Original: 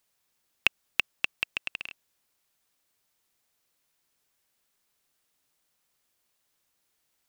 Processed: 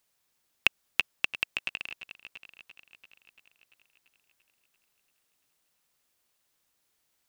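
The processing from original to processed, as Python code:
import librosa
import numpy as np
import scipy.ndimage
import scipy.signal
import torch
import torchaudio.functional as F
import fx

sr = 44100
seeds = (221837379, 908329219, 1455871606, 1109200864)

y = fx.echo_heads(x, sr, ms=341, heads='first and second', feedback_pct=48, wet_db=-18.5)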